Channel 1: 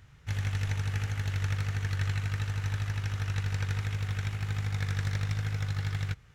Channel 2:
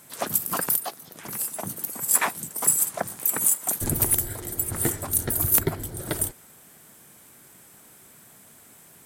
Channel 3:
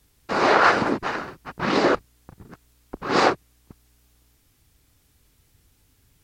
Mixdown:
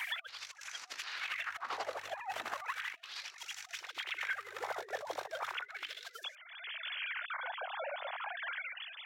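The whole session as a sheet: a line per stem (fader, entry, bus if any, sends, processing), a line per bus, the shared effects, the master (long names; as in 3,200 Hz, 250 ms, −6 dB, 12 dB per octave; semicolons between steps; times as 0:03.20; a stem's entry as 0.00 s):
−5.0 dB, 0.00 s, no bus, no send, low-shelf EQ 65 Hz +4.5 dB
−3.0 dB, 0.00 s, bus A, no send, three sine waves on the formant tracks; gate on every frequency bin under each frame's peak −20 dB strong
−8.5 dB, 0.00 s, bus A, no send, compressor whose output falls as the input rises −26 dBFS, ratio −0.5
bus A: 0.0 dB, brickwall limiter −19.5 dBFS, peak gain reduction 11 dB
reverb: not used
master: compressor whose output falls as the input rises −36 dBFS, ratio −0.5; auto-filter high-pass sine 0.35 Hz 570–6,200 Hz; multiband upward and downward compressor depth 100%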